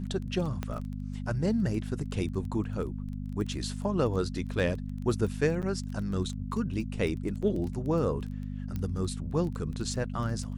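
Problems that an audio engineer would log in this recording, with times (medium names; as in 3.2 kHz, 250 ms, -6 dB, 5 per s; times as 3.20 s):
crackle 12 per s -35 dBFS
hum 50 Hz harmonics 5 -36 dBFS
0.63 s: pop -19 dBFS
5.62–5.63 s: dropout 7.9 ms
7.42–7.43 s: dropout 6.3 ms
8.76 s: pop -22 dBFS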